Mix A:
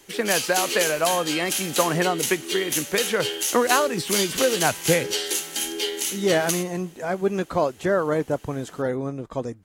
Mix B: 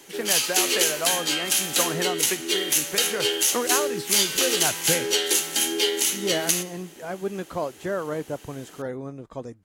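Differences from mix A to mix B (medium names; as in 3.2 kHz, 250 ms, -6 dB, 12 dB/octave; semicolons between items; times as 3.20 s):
speech -6.5 dB; background +4.0 dB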